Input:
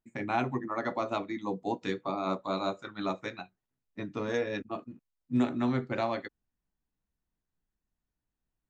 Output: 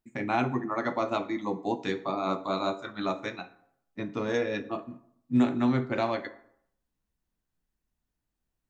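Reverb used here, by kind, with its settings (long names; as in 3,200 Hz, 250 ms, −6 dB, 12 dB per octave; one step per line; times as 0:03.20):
dense smooth reverb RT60 0.68 s, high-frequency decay 0.6×, pre-delay 0 ms, DRR 10.5 dB
level +2.5 dB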